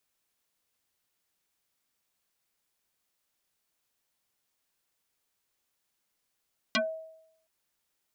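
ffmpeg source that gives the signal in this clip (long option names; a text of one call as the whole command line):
ffmpeg -f lavfi -i "aevalsrc='0.0841*pow(10,-3*t/0.78)*sin(2*PI*642*t+6.4*pow(10,-3*t/0.15)*sin(2*PI*1.36*642*t))':duration=0.72:sample_rate=44100" out.wav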